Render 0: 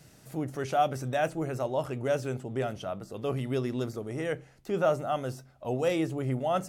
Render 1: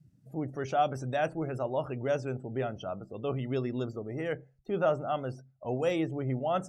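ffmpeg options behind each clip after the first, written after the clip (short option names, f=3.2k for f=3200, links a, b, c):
-af "afftdn=nr=26:nf=-47,volume=-1.5dB"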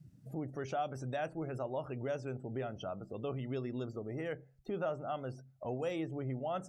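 -af "acompressor=threshold=-47dB:ratio=2,volume=3.5dB"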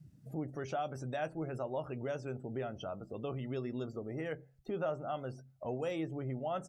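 -filter_complex "[0:a]asplit=2[a][b];[b]adelay=13,volume=-13.5dB[c];[a][c]amix=inputs=2:normalize=0"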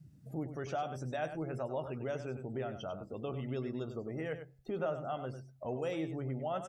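-af "aecho=1:1:98:0.316"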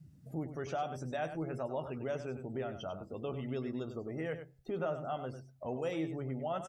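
-filter_complex "[0:a]asplit=2[a][b];[b]adelay=12,volume=-12.5dB[c];[a][c]amix=inputs=2:normalize=0"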